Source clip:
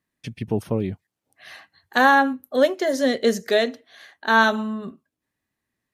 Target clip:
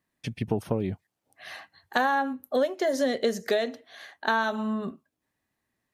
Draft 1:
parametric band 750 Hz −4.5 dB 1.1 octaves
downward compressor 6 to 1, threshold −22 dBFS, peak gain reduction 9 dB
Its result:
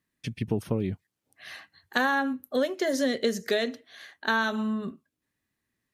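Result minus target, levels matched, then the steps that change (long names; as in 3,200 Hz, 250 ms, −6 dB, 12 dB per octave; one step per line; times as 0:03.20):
1,000 Hz band −3.0 dB
change: parametric band 750 Hz +4 dB 1.1 octaves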